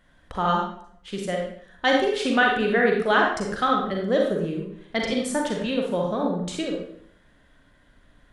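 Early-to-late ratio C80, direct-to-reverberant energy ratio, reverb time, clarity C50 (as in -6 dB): 6.0 dB, -0.5 dB, 0.65 s, 2.0 dB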